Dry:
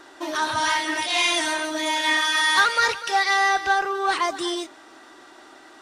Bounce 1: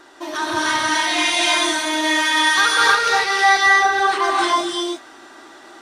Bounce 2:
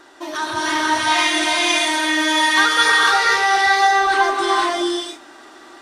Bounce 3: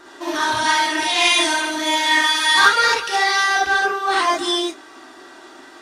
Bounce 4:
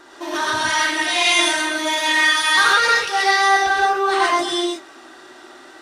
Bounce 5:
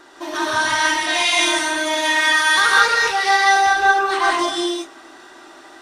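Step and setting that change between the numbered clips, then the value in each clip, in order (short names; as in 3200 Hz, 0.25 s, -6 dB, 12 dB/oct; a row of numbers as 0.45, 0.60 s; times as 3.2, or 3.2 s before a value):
non-linear reverb, gate: 350, 540, 90, 150, 220 ms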